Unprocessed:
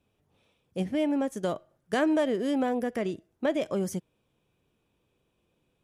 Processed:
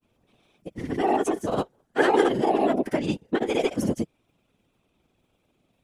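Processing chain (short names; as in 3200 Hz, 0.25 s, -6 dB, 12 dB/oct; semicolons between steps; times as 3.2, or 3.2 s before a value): grains 0.1 s, spray 0.1 s, pitch spread up and down by 0 st; formant-preserving pitch shift +5 st; whisperiser; gain +6.5 dB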